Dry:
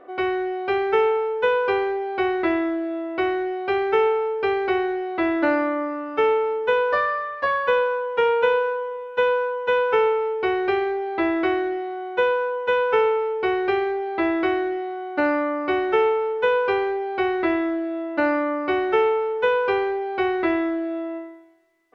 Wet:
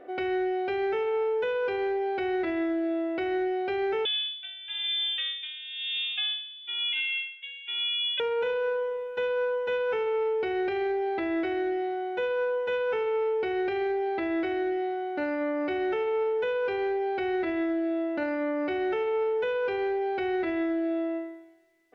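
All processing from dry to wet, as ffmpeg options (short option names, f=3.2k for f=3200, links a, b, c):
-filter_complex "[0:a]asettb=1/sr,asplit=3[a][b][c];[a]atrim=end=4.054[d];[b]atrim=start=4.05:end=8.2,asetpts=PTS-STARTPTS,afade=t=in:d=0.004:c=qsin,afade=t=out:st=4.146:d=0.004:c=qsin,lowpass=f=3.3k:t=q:w=0.5098,lowpass=f=3.3k:t=q:w=0.6013,lowpass=f=3.3k:t=q:w=0.9,lowpass=f=3.3k:t=q:w=2.563,afreqshift=-3900,aeval=exprs='val(0)*pow(10,-20*(0.5-0.5*cos(2*PI*1*n/s))/20)':c=same[e];[c]atrim=start=8.196[f];[d][e]acrossfade=d=0.004:c1=hsin:c2=qsin[g];[g][f]acrossfade=d=0.004:c1=qsin:c2=hsin,equalizer=f=1.1k:t=o:w=0.38:g=-13.5,alimiter=limit=-22dB:level=0:latency=1:release=87"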